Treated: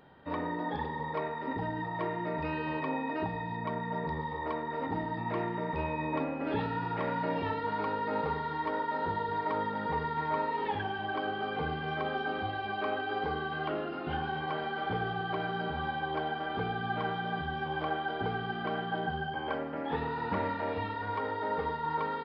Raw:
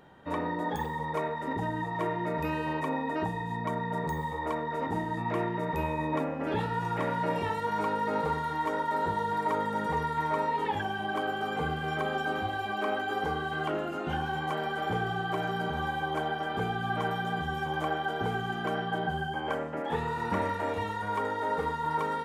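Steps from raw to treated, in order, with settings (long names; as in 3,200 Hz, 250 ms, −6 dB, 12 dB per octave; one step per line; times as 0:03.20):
on a send at −10.5 dB: convolution reverb RT60 2.0 s, pre-delay 4 ms
on the sum: downsampling to 11,025 Hz
level −2.5 dB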